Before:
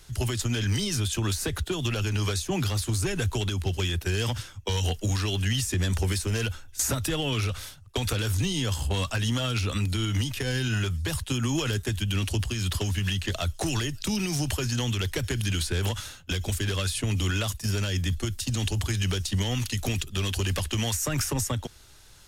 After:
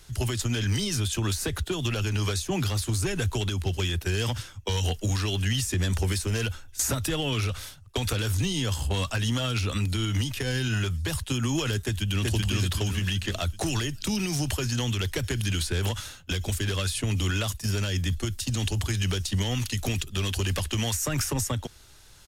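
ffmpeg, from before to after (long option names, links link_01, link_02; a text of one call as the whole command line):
ffmpeg -i in.wav -filter_complex "[0:a]asplit=2[link_01][link_02];[link_02]afade=type=in:start_time=11.85:duration=0.01,afade=type=out:start_time=12.25:duration=0.01,aecho=0:1:380|760|1140|1520|1900|2280:0.891251|0.401063|0.180478|0.0812152|0.0365469|0.0164461[link_03];[link_01][link_03]amix=inputs=2:normalize=0" out.wav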